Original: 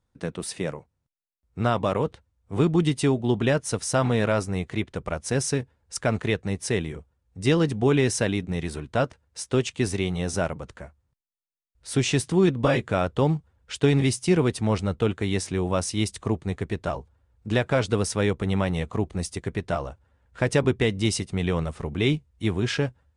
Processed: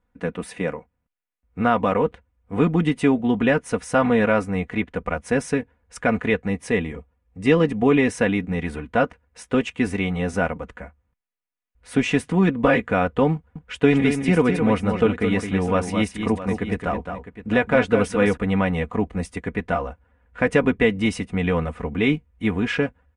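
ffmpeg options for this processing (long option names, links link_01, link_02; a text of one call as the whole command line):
ffmpeg -i in.wav -filter_complex "[0:a]asettb=1/sr,asplit=3[link_01][link_02][link_03];[link_01]atrim=end=6.494[link_04];[link_02]atrim=start=6.49:end=8.1,asetpts=PTS-STARTPTS,afade=type=in:duration=0.004:curve=qsin,afade=type=out:start_time=1.606:duration=0.004:curve=qsin,bandreject=frequency=1500:width=9.8[link_05];[link_03]atrim=start=8.096[link_06];[link_04][link_05]acrossfade=duration=0.004:curve1=hsin:curve2=qsin[link_07];[link_07][link_06]acrossfade=duration=0.004:curve1=qsin:curve2=hsin,asettb=1/sr,asplit=3[link_08][link_09][link_10];[link_08]atrim=end=13.344[link_11];[link_09]atrim=start=13.34:end=18.37,asetpts=PTS-STARTPTS,afade=type=in:duration=0.004:curve=qsin,afade=type=out:start_time=5.026:duration=0.004:curve=qsin,aecho=1:1:215|656:0.447|0.224,atrim=end_sample=221823[link_12];[link_10]atrim=start=18.366[link_13];[link_11][link_12]acrossfade=duration=0.004:curve1=hsin:curve2=qsin[link_14];[link_14][link_13]acrossfade=duration=0.004:curve1=qsin:curve2=hsin,highshelf=frequency=3200:width_type=q:width=1.5:gain=-10.5,aecho=1:1:4.1:0.66,volume=2.5dB" out.wav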